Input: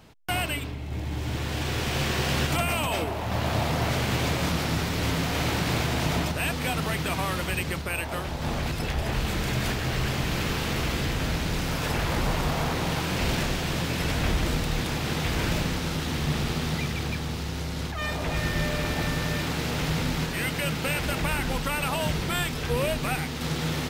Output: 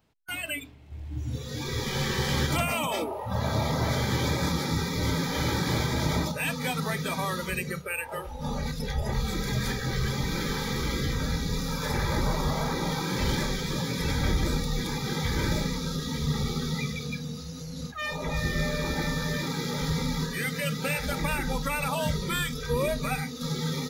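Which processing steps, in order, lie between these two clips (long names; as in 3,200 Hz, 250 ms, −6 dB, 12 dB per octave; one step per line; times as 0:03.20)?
noise reduction from a noise print of the clip's start 17 dB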